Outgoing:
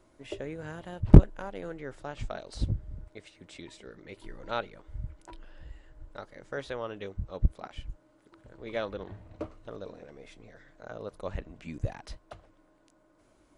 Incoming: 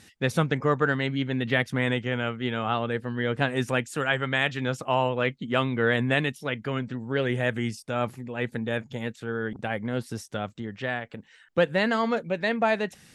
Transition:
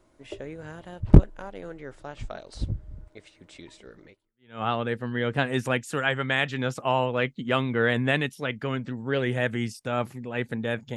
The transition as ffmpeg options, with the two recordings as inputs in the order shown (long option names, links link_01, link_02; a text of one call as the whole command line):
ffmpeg -i cue0.wav -i cue1.wav -filter_complex "[0:a]apad=whole_dur=10.96,atrim=end=10.96,atrim=end=4.62,asetpts=PTS-STARTPTS[link_01];[1:a]atrim=start=2.09:end=8.99,asetpts=PTS-STARTPTS[link_02];[link_01][link_02]acrossfade=duration=0.56:curve1=exp:curve2=exp" out.wav